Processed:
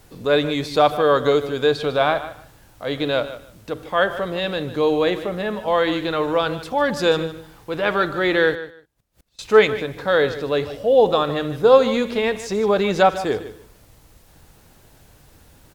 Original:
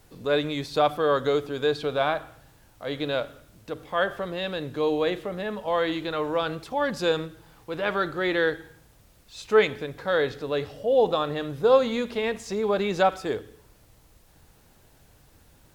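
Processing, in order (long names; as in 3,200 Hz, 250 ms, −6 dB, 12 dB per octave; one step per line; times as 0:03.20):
0:08.55–0:09.39: gate with flip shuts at −47 dBFS, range −26 dB
repeating echo 151 ms, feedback 18%, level −14 dB
level +6 dB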